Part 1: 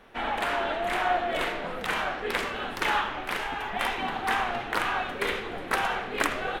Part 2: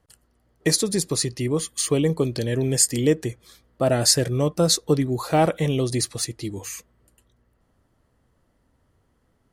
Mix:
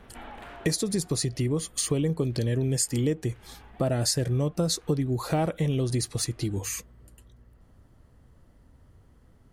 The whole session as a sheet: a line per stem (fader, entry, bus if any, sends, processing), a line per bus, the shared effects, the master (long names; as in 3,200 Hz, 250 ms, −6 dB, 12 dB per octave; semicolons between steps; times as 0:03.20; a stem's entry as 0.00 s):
−16.0 dB, 0.00 s, no send, low-shelf EQ 280 Hz +11.5 dB; envelope flattener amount 50%; automatic ducking −12 dB, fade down 1.30 s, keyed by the second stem
+3.0 dB, 0.00 s, no send, low-shelf EQ 190 Hz +9.5 dB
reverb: not used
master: downward compressor 3 to 1, threshold −27 dBFS, peak gain reduction 14 dB